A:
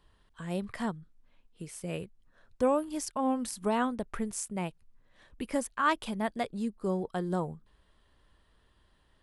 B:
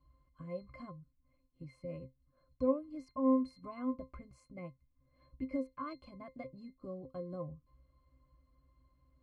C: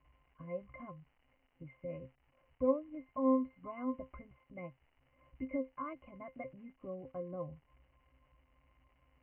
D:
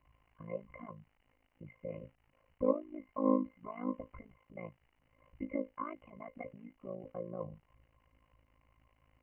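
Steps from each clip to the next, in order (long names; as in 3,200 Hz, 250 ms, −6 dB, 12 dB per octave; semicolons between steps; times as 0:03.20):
in parallel at +1.5 dB: downward compressor, threshold −39 dBFS, peak gain reduction 16.5 dB; on the sum: resonances in every octave C, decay 0.16 s
surface crackle 360 per second −57 dBFS; Chebyshev low-pass with heavy ripple 3,000 Hz, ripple 6 dB; level +3.5 dB
amplitude modulation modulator 54 Hz, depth 85%; level +4 dB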